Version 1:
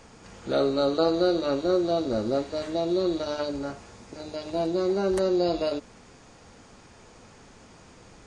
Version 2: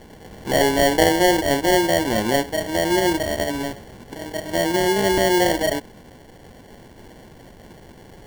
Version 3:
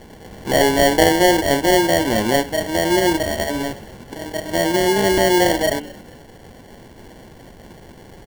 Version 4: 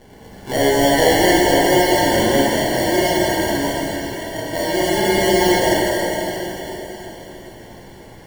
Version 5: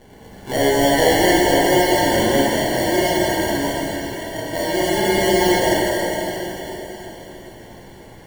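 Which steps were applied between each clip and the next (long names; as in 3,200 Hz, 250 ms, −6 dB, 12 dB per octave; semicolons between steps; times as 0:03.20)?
high-shelf EQ 7,700 Hz +11.5 dB; decimation without filtering 35×; level +6 dB
hum removal 147.9 Hz, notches 27; echo with shifted repeats 223 ms, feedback 37%, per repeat −69 Hz, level −21.5 dB; level +2.5 dB
dense smooth reverb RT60 4.3 s, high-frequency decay 1×, DRR −6.5 dB; level −6 dB
notch filter 5,100 Hz, Q 10; level −1 dB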